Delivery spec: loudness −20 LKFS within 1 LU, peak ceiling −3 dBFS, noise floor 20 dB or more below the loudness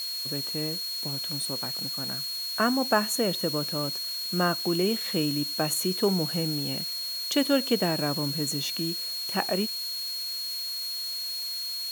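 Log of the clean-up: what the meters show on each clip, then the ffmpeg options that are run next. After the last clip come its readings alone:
interfering tone 4,300 Hz; level of the tone −31 dBFS; background noise floor −33 dBFS; target noise floor −48 dBFS; integrated loudness −27.5 LKFS; sample peak −8.0 dBFS; target loudness −20.0 LKFS
→ -af "bandreject=frequency=4300:width=30"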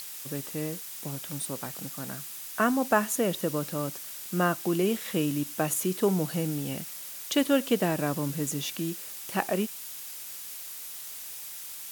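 interfering tone none found; background noise floor −41 dBFS; target noise floor −50 dBFS
→ -af "afftdn=noise_reduction=9:noise_floor=-41"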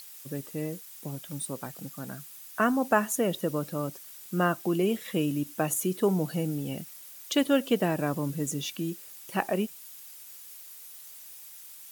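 background noise floor −47 dBFS; target noise floor −50 dBFS
→ -af "afftdn=noise_reduction=6:noise_floor=-47"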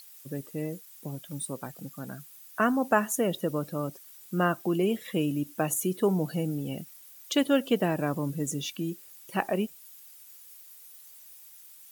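background noise floor −51 dBFS; integrated loudness −29.5 LKFS; sample peak −9.0 dBFS; target loudness −20.0 LKFS
→ -af "volume=9.5dB,alimiter=limit=-3dB:level=0:latency=1"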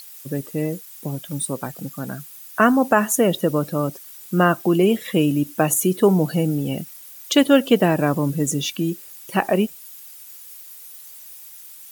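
integrated loudness −20.5 LKFS; sample peak −3.0 dBFS; background noise floor −42 dBFS

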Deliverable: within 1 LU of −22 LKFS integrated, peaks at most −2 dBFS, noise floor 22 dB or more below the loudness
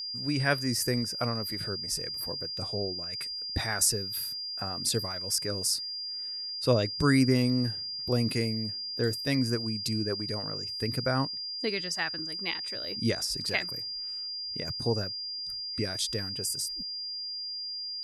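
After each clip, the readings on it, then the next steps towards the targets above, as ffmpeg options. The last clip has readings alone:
interfering tone 4,800 Hz; level of the tone −34 dBFS; integrated loudness −30.0 LKFS; sample peak −12.0 dBFS; target loudness −22.0 LKFS
→ -af "bandreject=frequency=4800:width=30"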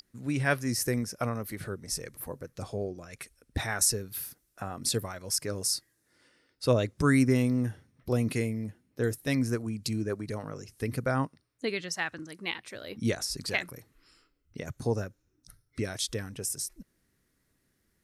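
interfering tone none found; integrated loudness −31.0 LKFS; sample peak −12.0 dBFS; target loudness −22.0 LKFS
→ -af "volume=9dB"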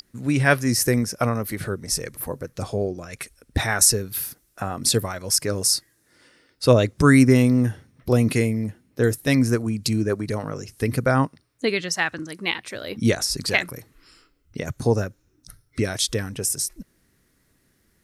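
integrated loudness −22.0 LKFS; sample peak −3.0 dBFS; background noise floor −66 dBFS

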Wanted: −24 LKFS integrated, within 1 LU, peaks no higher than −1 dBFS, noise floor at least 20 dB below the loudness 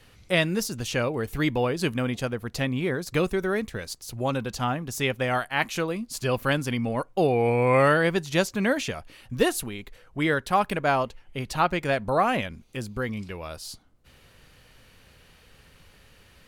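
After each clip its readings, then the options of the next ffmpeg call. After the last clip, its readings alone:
integrated loudness −26.0 LKFS; sample peak −8.0 dBFS; target loudness −24.0 LKFS
→ -af "volume=2dB"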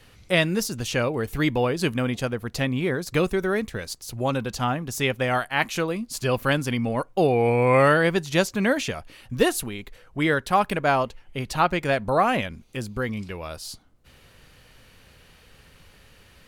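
integrated loudness −24.0 LKFS; sample peak −6.0 dBFS; background noise floor −54 dBFS

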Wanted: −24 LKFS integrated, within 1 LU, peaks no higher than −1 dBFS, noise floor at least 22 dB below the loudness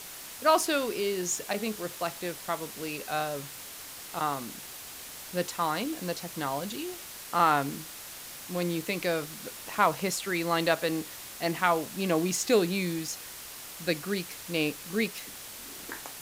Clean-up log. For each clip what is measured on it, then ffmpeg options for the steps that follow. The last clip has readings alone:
background noise floor −44 dBFS; target noise floor −53 dBFS; integrated loudness −30.5 LKFS; sample peak −9.5 dBFS; target loudness −24.0 LKFS
→ -af "afftdn=noise_reduction=9:noise_floor=-44"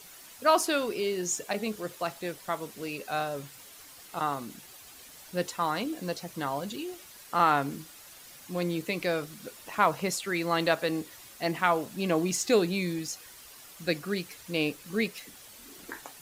background noise floor −50 dBFS; target noise floor −52 dBFS
→ -af "afftdn=noise_reduction=6:noise_floor=-50"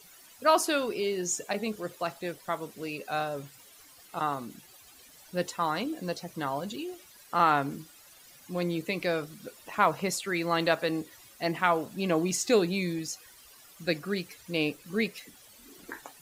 background noise floor −55 dBFS; integrated loudness −30.0 LKFS; sample peak −9.5 dBFS; target loudness −24.0 LKFS
→ -af "volume=6dB"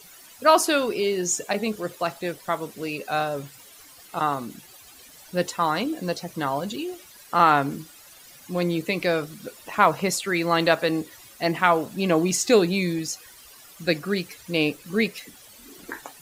integrated loudness −24.0 LKFS; sample peak −3.5 dBFS; background noise floor −49 dBFS

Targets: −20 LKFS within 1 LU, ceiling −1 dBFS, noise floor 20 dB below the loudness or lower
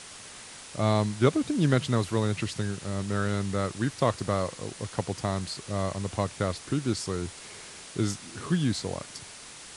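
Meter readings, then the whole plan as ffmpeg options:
background noise floor −46 dBFS; target noise floor −49 dBFS; integrated loudness −29.0 LKFS; sample peak −8.5 dBFS; target loudness −20.0 LKFS
→ -af "afftdn=noise_reduction=6:noise_floor=-46"
-af "volume=9dB,alimiter=limit=-1dB:level=0:latency=1"

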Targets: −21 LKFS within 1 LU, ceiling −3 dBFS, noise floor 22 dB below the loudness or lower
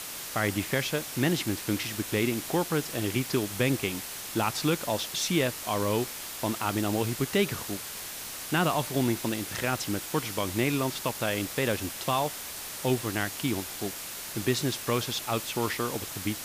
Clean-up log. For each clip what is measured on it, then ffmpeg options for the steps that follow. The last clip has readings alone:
background noise floor −39 dBFS; target noise floor −52 dBFS; integrated loudness −29.5 LKFS; sample peak −13.0 dBFS; target loudness −21.0 LKFS
→ -af "afftdn=noise_reduction=13:noise_floor=-39"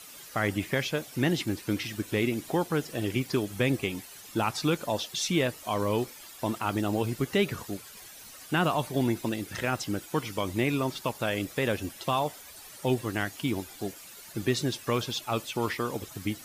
background noise floor −48 dBFS; target noise floor −52 dBFS
→ -af "afftdn=noise_reduction=6:noise_floor=-48"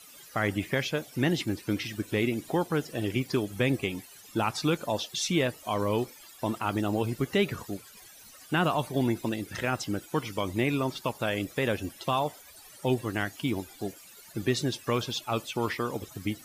background noise floor −51 dBFS; target noise floor −52 dBFS
→ -af "afftdn=noise_reduction=6:noise_floor=-51"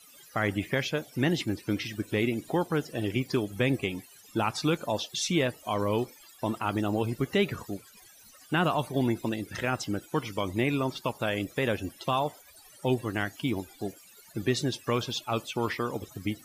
background noise floor −55 dBFS; integrated loudness −30.0 LKFS; sample peak −14.0 dBFS; target loudness −21.0 LKFS
→ -af "volume=9dB"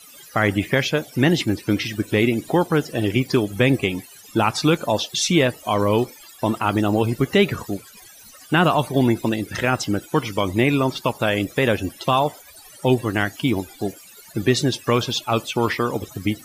integrated loudness −21.0 LKFS; sample peak −5.0 dBFS; background noise floor −46 dBFS

